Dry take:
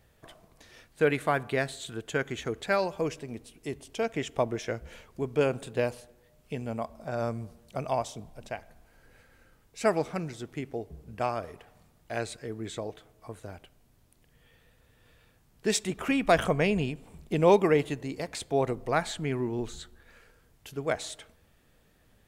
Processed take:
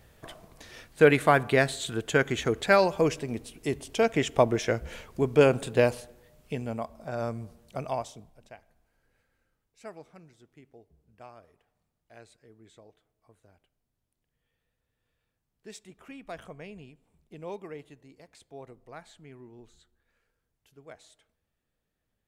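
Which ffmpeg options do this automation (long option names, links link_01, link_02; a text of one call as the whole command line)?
ffmpeg -i in.wav -af "volume=6dB,afade=type=out:start_time=5.93:duration=0.93:silence=0.446684,afade=type=out:start_time=7.81:duration=0.58:silence=0.316228,afade=type=out:start_time=8.39:duration=1.51:silence=0.421697" out.wav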